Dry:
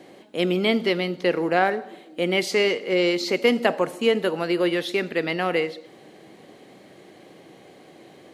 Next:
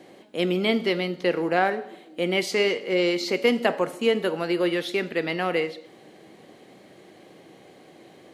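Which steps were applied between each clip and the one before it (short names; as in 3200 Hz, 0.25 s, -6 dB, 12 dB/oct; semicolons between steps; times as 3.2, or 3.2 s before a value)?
de-hum 140.7 Hz, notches 37; gain -1.5 dB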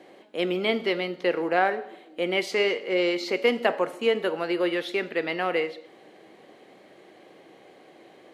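tone controls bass -10 dB, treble -7 dB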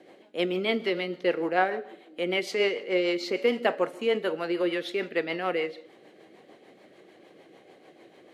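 rotary speaker horn 6.7 Hz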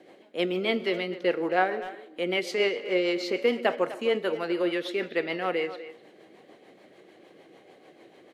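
speakerphone echo 0.25 s, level -13 dB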